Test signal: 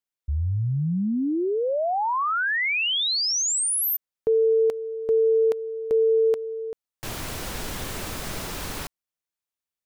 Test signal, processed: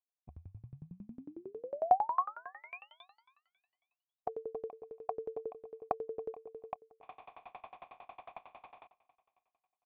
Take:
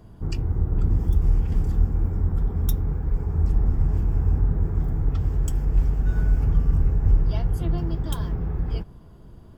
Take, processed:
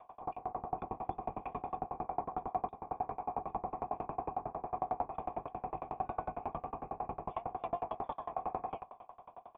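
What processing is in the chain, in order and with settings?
spectral peaks clipped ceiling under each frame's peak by 28 dB; resonant high shelf 1.8 kHz +10.5 dB, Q 1.5; compression 6:1, threshold -22 dBFS; cascade formant filter a; feedback delay 282 ms, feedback 50%, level -20 dB; sawtooth tremolo in dB decaying 11 Hz, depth 30 dB; trim +12.5 dB

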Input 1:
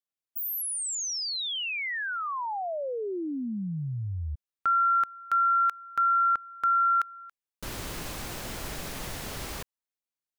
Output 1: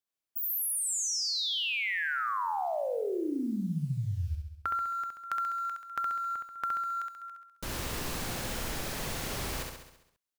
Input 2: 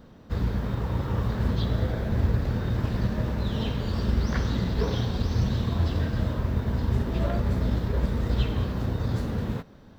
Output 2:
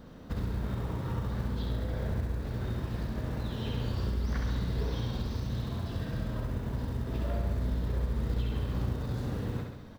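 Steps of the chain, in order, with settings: compression 16:1, threshold -31 dBFS; short-mantissa float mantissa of 4-bit; feedback delay 67 ms, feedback 58%, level -4 dB

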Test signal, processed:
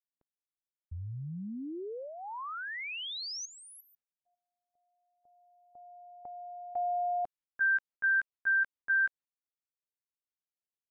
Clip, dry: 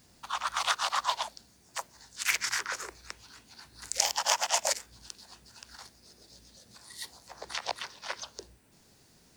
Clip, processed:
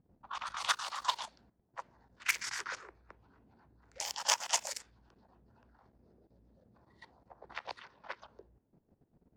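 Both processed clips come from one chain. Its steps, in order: level-controlled noise filter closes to 550 Hz, open at -26 dBFS; level held to a coarse grid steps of 13 dB; dynamic bell 670 Hz, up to -6 dB, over -50 dBFS, Q 3.1

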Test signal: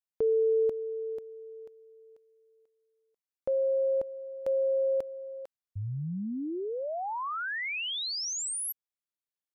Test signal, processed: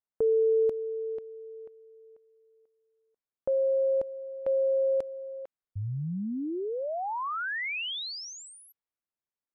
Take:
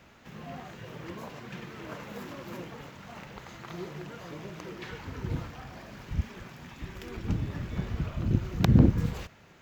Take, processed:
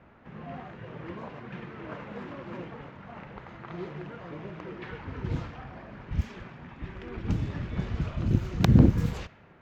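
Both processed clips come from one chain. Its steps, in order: level-controlled noise filter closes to 1.5 kHz, open at -23 dBFS; trim +1.5 dB

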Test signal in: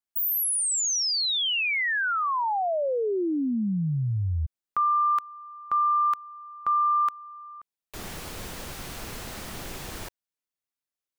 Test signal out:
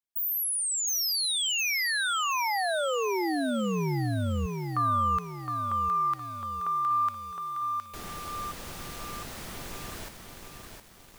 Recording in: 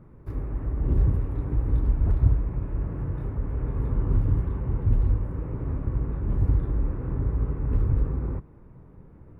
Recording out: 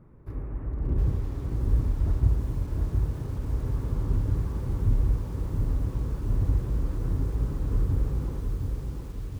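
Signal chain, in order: bit-crushed delay 714 ms, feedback 55%, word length 8-bit, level -4.5 dB; trim -3.5 dB

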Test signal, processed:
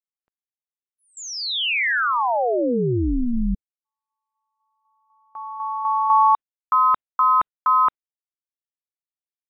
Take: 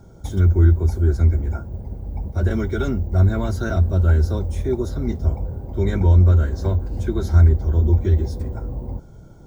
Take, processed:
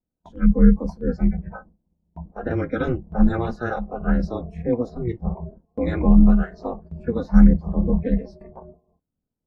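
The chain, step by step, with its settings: spectral noise reduction 21 dB; level-controlled noise filter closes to 1.3 kHz, open at -10.5 dBFS; ring modulator 120 Hz; gate with hold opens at -35 dBFS; trim +4 dB

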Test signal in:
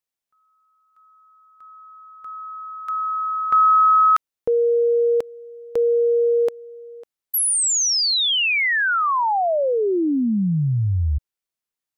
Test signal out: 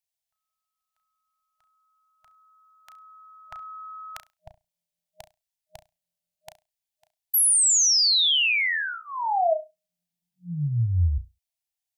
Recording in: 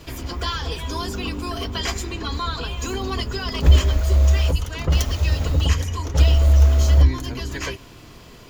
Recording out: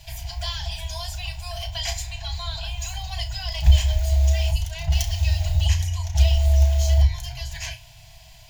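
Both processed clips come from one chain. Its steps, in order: static phaser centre 510 Hz, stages 4; FFT band-reject 180–620 Hz; flutter echo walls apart 5.8 m, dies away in 0.22 s

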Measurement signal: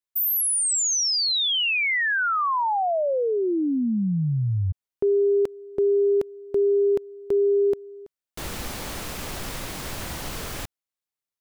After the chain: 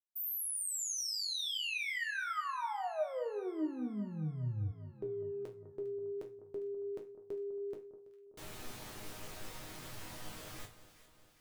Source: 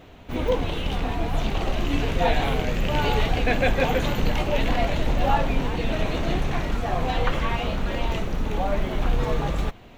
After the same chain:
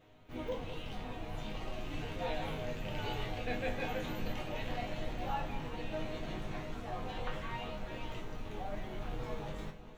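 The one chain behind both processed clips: chord resonator G#2 minor, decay 0.28 s; on a send: echo whose repeats swap between lows and highs 202 ms, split 1.3 kHz, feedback 74%, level -12 dB; on the sum: trim -2.5 dB

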